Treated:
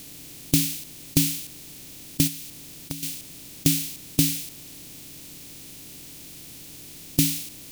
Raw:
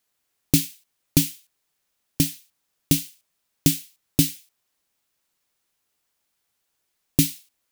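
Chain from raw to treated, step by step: spectral levelling over time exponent 0.4; 2.27–3.03 s: compression 8:1, threshold -27 dBFS, peak gain reduction 16 dB; trim -4 dB

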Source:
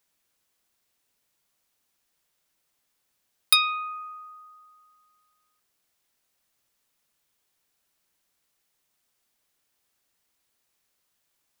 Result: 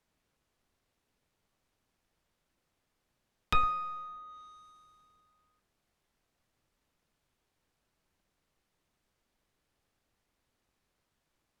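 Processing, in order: square wave that keeps the level; tilt EQ -2.5 dB/octave; low-pass that closes with the level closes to 1.7 kHz, closed at -37 dBFS; trim -5 dB

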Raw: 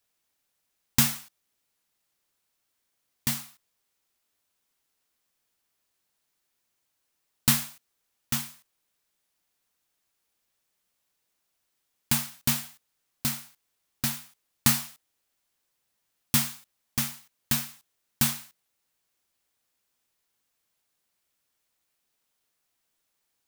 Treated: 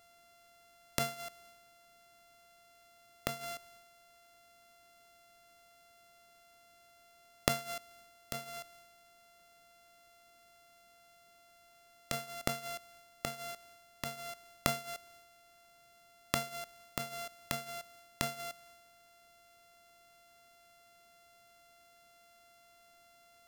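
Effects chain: sorted samples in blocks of 64 samples; inverted gate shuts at -23 dBFS, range -31 dB; transient shaper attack -8 dB, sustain +5 dB; trim +14.5 dB

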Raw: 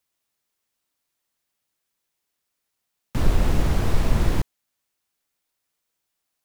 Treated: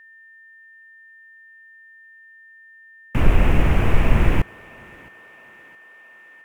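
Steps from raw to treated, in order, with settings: resonant high shelf 3.3 kHz -8.5 dB, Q 3; thinning echo 666 ms, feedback 64%, high-pass 390 Hz, level -19.5 dB; whistle 1.8 kHz -49 dBFS; trim +4 dB

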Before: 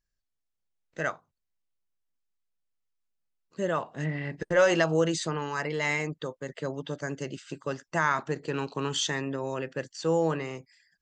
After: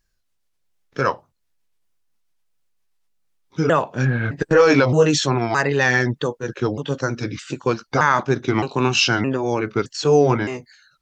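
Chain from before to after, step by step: sawtooth pitch modulation -4.5 st, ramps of 616 ms; loudness maximiser +16 dB; trim -3.5 dB

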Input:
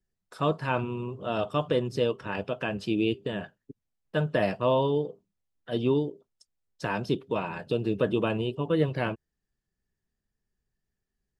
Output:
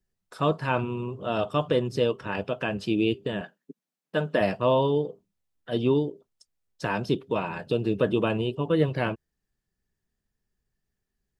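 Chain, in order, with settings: 3.41–4.41 s: brick-wall FIR high-pass 150 Hz; trim +2 dB

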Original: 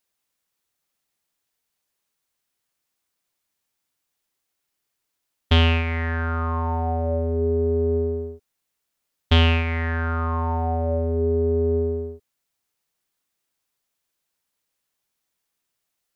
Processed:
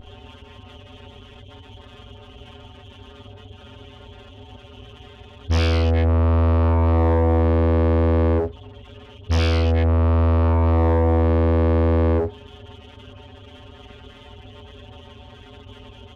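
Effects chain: spectral levelling over time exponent 0.2; dynamic bell 3.1 kHz, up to +4 dB, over -37 dBFS, Q 2.1; peak limiter -10.5 dBFS, peak gain reduction 9.5 dB; spectral noise reduction 19 dB; early reflections 20 ms -15.5 dB, 51 ms -4.5 dB, 70 ms -7.5 dB; compression 6:1, threshold -17 dBFS, peak gain reduction 5.5 dB; on a send at -22 dB: reverberation RT60 0.75 s, pre-delay 43 ms; on the sum: spectral gate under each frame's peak -15 dB strong; waveshaping leveller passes 2; tone controls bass +1 dB, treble -7 dB; loudspeaker Doppler distortion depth 0.87 ms

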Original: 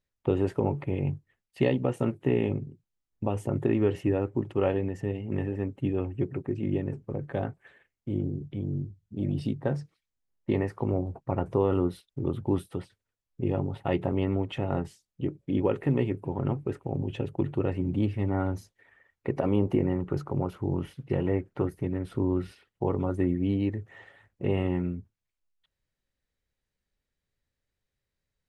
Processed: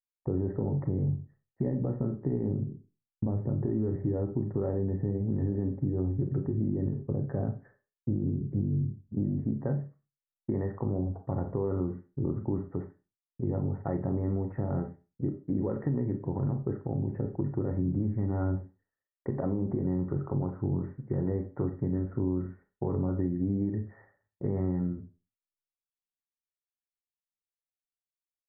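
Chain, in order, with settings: tilt shelf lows +8.5 dB, from 9.23 s lows +3.5 dB; expander -45 dBFS; dynamic bell 150 Hz, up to +5 dB, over -31 dBFS, Q 0.85; peak limiter -14 dBFS, peak gain reduction 11 dB; steep low-pass 1.9 kHz 72 dB/octave; Schroeder reverb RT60 0.3 s, combs from 29 ms, DRR 6.5 dB; compression, threshold -21 dBFS, peak gain reduction 6 dB; trim -4 dB

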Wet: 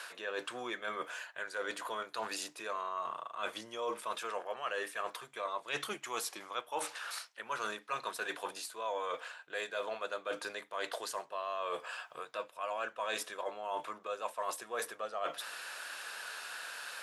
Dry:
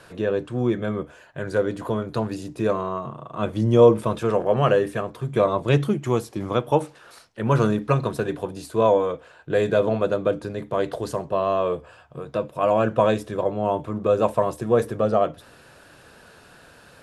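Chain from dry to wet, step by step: high-pass 1.2 kHz 12 dB/octave; reverse; compression 6:1, threshold -45 dBFS, peak gain reduction 21 dB; reverse; trim +9 dB

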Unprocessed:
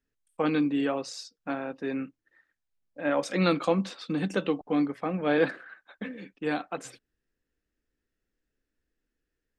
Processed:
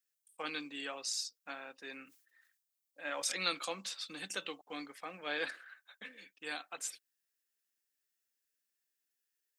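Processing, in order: differentiator; 2.04–3.32 s: decay stretcher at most 88 dB/s; trim +6 dB

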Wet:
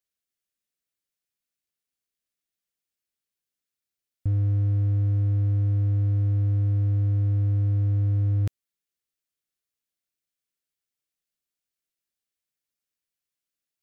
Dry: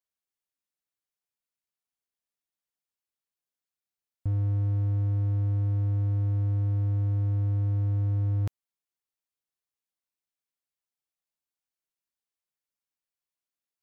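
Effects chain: peaking EQ 900 Hz -10.5 dB 0.8 oct; trim +3.5 dB

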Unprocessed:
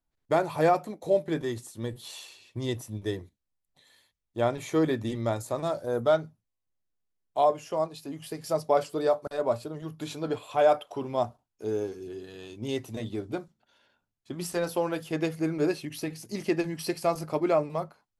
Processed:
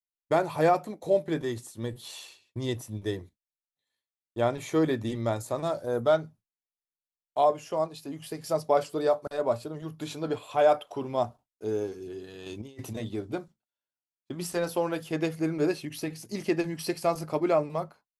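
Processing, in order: expander -46 dBFS; 12.46–12.95 s: compressor with a negative ratio -38 dBFS, ratio -0.5

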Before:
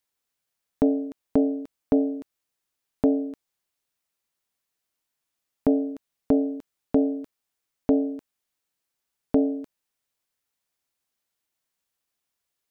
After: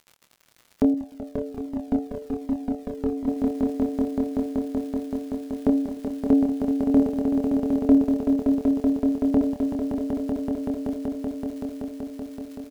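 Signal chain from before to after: low-pass that closes with the level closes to 550 Hz, closed at -22.5 dBFS; crackle 73 per s -38 dBFS; doubling 26 ms -6 dB; echo with a slow build-up 190 ms, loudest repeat 5, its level -5.5 dB; 0.94–3.28 s: Shepard-style flanger falling 1.3 Hz

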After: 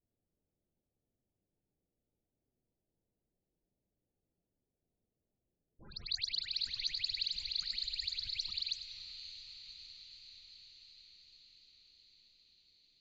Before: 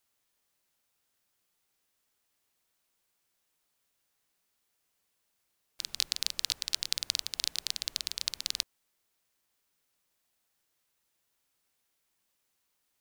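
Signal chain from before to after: level-controlled noise filter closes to 400 Hz, open at -39 dBFS; elliptic low-pass 7.6 kHz, stop band 50 dB; bass shelf 200 Hz +6 dB; band-stop 1.7 kHz, Q 19; in parallel at -3.5 dB: wavefolder -24.5 dBFS; on the sum: phase dispersion highs, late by 148 ms, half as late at 2.1 kHz; loudest bins only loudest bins 32; on a send: echo that smears into a reverb 569 ms, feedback 69%, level -12 dB; on the sum: modulated delay 99 ms, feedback 54%, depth 95 cents, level -12 dB

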